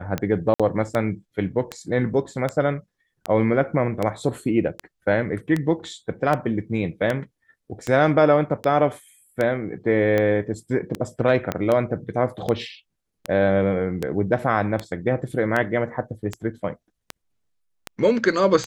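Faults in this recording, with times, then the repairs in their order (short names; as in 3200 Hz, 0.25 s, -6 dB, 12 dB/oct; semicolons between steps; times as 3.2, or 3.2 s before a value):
tick 78 rpm -11 dBFS
0.54–0.6 gap 56 ms
11.52 pop -10 dBFS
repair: de-click; interpolate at 0.54, 56 ms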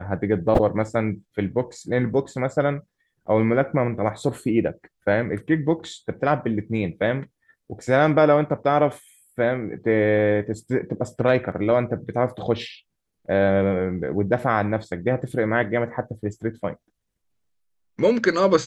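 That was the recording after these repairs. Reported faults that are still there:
11.52 pop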